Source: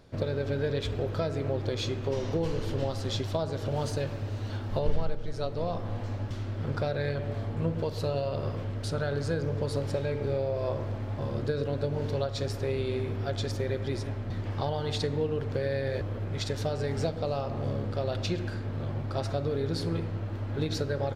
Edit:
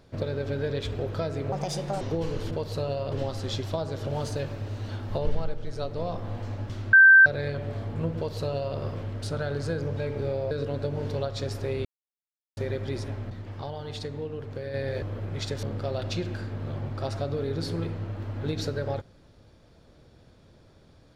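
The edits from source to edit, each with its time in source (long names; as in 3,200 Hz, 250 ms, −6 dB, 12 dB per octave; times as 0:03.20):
0:01.52–0:02.23: play speed 145%
0:06.54–0:06.87: beep over 1,560 Hz −10 dBFS
0:07.77–0:08.38: duplicate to 0:02.73
0:09.58–0:10.02: remove
0:10.56–0:11.50: remove
0:12.84–0:13.56: silence
0:14.29–0:15.73: clip gain −5.5 dB
0:16.62–0:17.76: remove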